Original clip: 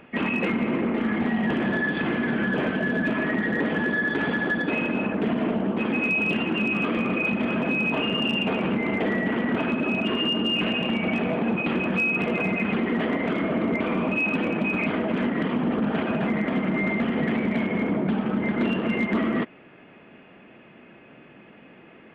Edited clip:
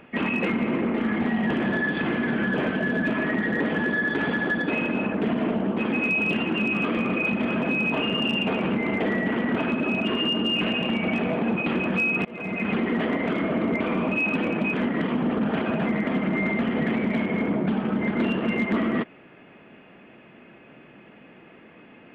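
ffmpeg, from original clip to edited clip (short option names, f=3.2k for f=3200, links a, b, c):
-filter_complex "[0:a]asplit=3[a][b][c];[a]atrim=end=12.25,asetpts=PTS-STARTPTS,afade=t=out:st=12.246:d=0.004:c=hsin:silence=0.0668344[d];[b]atrim=start=12.25:end=14.742,asetpts=PTS-STARTPTS,afade=t=in:d=0.46:silence=0.0668344[e];[c]atrim=start=15.148[f];[d][e]concat=n=2:v=0:a=1[g];[g][f]acrossfade=d=0.004:c1=hsin:c2=hsin"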